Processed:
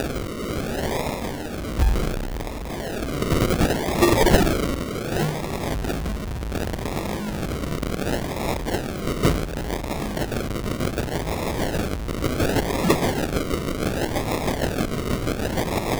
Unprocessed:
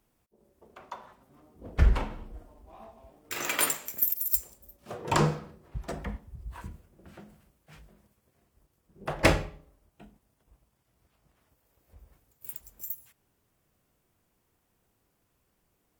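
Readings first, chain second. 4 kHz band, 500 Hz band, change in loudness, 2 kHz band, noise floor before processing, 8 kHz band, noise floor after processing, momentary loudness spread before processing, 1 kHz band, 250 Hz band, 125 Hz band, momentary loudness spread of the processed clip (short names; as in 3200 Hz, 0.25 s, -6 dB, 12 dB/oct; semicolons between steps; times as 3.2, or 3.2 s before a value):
+11.0 dB, +14.0 dB, +4.5 dB, +8.5 dB, -75 dBFS, +4.5 dB, -30 dBFS, 20 LU, +10.0 dB, +15.5 dB, +10.5 dB, 8 LU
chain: zero-crossing step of -22 dBFS; high shelf 2400 Hz +11 dB; rotary speaker horn 0.85 Hz, later 6.3 Hz, at 8.04; decimation with a swept rate 41×, swing 60% 0.68 Hz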